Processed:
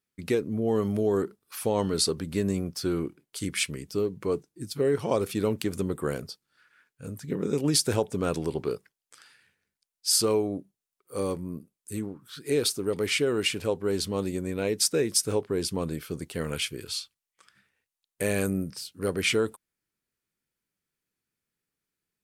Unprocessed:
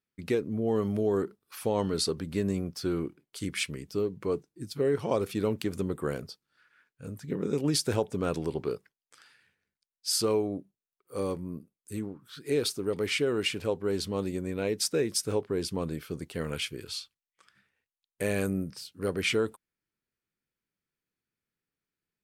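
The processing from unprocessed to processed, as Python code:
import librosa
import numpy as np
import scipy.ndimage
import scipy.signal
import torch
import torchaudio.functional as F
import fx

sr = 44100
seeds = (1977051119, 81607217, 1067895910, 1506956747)

y = fx.peak_eq(x, sr, hz=10000.0, db=5.0, octaves=1.5)
y = y * 10.0 ** (2.0 / 20.0)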